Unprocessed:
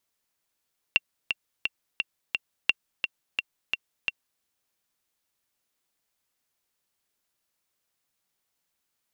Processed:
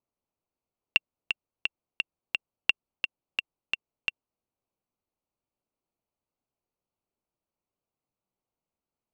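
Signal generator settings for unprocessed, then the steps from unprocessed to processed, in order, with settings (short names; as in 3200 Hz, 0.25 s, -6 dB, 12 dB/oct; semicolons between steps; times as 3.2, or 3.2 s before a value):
metronome 173 bpm, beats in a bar 5, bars 2, 2740 Hz, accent 6.5 dB -6 dBFS
Wiener smoothing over 25 samples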